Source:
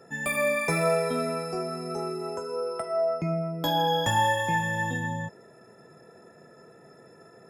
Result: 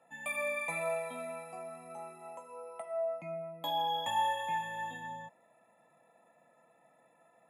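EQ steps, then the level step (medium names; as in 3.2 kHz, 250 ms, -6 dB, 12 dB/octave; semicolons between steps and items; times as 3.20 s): high-pass 340 Hz 12 dB/octave; low-pass 12 kHz 12 dB/octave; static phaser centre 1.5 kHz, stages 6; -6.0 dB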